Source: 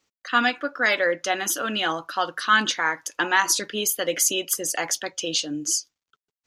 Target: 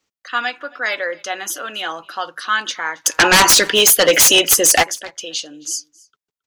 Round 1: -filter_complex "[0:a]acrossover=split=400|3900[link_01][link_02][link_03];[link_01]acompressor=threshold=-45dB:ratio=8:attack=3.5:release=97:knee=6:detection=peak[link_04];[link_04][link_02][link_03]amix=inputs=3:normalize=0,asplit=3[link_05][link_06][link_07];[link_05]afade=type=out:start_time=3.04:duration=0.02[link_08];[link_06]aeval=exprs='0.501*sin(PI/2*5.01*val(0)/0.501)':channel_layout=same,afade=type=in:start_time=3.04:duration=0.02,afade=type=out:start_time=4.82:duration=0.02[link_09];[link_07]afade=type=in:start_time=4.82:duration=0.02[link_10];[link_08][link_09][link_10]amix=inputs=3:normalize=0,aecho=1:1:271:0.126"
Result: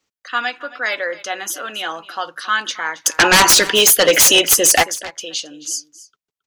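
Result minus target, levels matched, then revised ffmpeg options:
echo-to-direct +7 dB
-filter_complex "[0:a]acrossover=split=400|3900[link_01][link_02][link_03];[link_01]acompressor=threshold=-45dB:ratio=8:attack=3.5:release=97:knee=6:detection=peak[link_04];[link_04][link_02][link_03]amix=inputs=3:normalize=0,asplit=3[link_05][link_06][link_07];[link_05]afade=type=out:start_time=3.04:duration=0.02[link_08];[link_06]aeval=exprs='0.501*sin(PI/2*5.01*val(0)/0.501)':channel_layout=same,afade=type=in:start_time=3.04:duration=0.02,afade=type=out:start_time=4.82:duration=0.02[link_09];[link_07]afade=type=in:start_time=4.82:duration=0.02[link_10];[link_08][link_09][link_10]amix=inputs=3:normalize=0,aecho=1:1:271:0.0562"

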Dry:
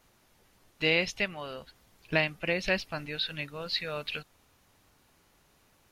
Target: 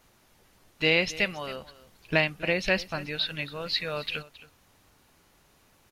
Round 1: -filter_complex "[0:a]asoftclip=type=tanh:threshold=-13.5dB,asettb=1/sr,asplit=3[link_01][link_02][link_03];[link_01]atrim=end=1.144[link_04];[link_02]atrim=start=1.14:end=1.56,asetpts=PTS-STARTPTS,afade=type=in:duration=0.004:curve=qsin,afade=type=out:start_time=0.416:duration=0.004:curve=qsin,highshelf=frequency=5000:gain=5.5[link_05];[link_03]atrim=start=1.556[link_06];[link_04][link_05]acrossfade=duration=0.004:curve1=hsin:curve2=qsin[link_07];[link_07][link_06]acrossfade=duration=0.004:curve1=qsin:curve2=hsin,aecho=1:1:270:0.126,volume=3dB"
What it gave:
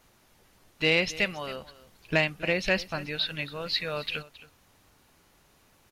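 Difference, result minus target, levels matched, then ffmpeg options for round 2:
soft clipping: distortion +15 dB
-filter_complex "[0:a]asoftclip=type=tanh:threshold=-5dB,asettb=1/sr,asplit=3[link_01][link_02][link_03];[link_01]atrim=end=1.144[link_04];[link_02]atrim=start=1.14:end=1.56,asetpts=PTS-STARTPTS,afade=type=in:duration=0.004:curve=qsin,afade=type=out:start_time=0.416:duration=0.004:curve=qsin,highshelf=frequency=5000:gain=5.5[link_05];[link_03]atrim=start=1.556[link_06];[link_04][link_05]acrossfade=duration=0.004:curve1=hsin:curve2=qsin[link_07];[link_07][link_06]acrossfade=duration=0.004:curve1=qsin:curve2=hsin,aecho=1:1:270:0.126,volume=3dB"

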